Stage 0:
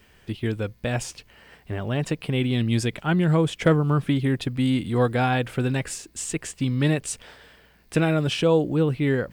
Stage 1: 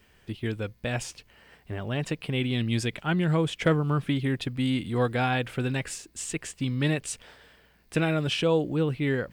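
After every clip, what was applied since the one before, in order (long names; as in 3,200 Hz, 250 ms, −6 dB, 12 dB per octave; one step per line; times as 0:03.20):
dynamic equaliser 2,700 Hz, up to +4 dB, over −39 dBFS, Q 0.73
level −4.5 dB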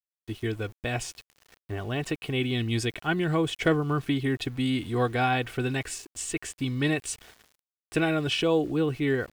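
comb filter 2.7 ms, depth 46%
centre clipping without the shift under −47 dBFS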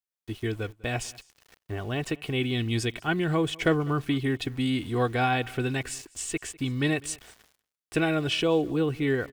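single-tap delay 200 ms −23.5 dB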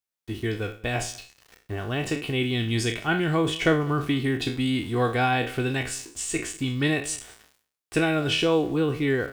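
peak hold with a decay on every bin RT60 0.38 s
level +1.5 dB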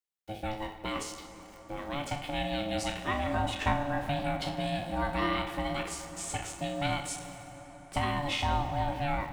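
ring modulation 430 Hz
convolution reverb RT60 5.9 s, pre-delay 43 ms, DRR 9.5 dB
level −4.5 dB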